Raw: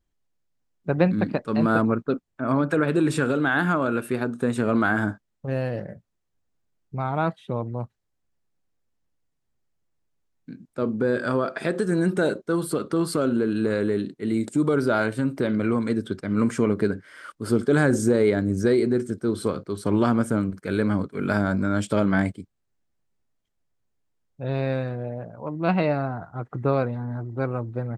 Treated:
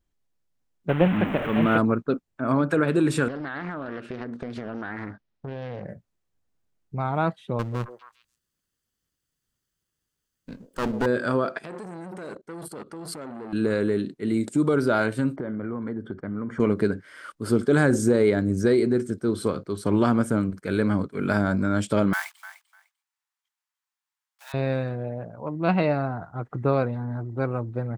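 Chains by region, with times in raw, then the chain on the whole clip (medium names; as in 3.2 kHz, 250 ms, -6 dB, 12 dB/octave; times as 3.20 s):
0.89–1.78 s: one-bit delta coder 16 kbps, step -23 dBFS + small samples zeroed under -42 dBFS
3.28–5.85 s: low-pass 5.3 kHz 24 dB/octave + compression 8:1, threshold -29 dBFS + loudspeaker Doppler distortion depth 0.54 ms
7.59–11.06 s: comb filter that takes the minimum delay 0.64 ms + treble shelf 2.1 kHz +10 dB + repeats whose band climbs or falls 134 ms, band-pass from 490 Hz, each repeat 1.4 oct, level -7.5 dB
11.57–13.53 s: band-stop 3.7 kHz, Q 14 + level held to a coarse grid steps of 17 dB + transformer saturation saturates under 1.3 kHz
15.36–16.60 s: Savitzky-Golay filter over 41 samples + compression 5:1, threshold -27 dBFS
22.13–24.54 s: block-companded coder 5-bit + steep high-pass 860 Hz 48 dB/octave + feedback delay 299 ms, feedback 17%, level -14 dB
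whole clip: none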